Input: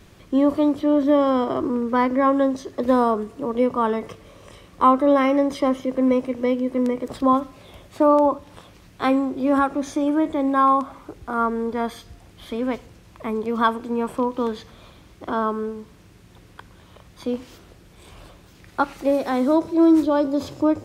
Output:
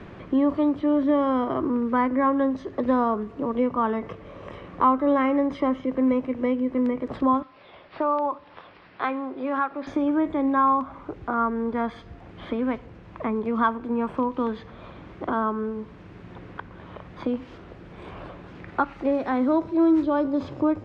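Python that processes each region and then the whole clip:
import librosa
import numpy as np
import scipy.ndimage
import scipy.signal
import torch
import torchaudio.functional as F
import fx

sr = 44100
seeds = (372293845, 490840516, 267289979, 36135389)

y = fx.chain(x, sr, fx.highpass(hz=960.0, slope=6),
    fx.resample_bad(factor=4, down='none', up='filtered'), at=(7.42, 9.87))
y = scipy.signal.sosfilt(scipy.signal.butter(2, 2200.0, 'lowpass', fs=sr, output='sos'), y)
y = fx.dynamic_eq(y, sr, hz=500.0, q=0.91, threshold_db=-31.0, ratio=4.0, max_db=-5)
y = fx.band_squash(y, sr, depth_pct=40)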